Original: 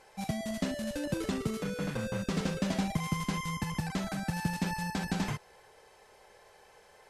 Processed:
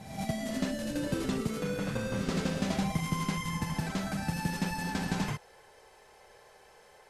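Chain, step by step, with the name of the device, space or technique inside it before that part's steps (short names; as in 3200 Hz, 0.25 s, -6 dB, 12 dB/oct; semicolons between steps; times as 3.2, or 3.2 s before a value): reverse reverb (reverse; reverb RT60 0.90 s, pre-delay 55 ms, DRR 5 dB; reverse)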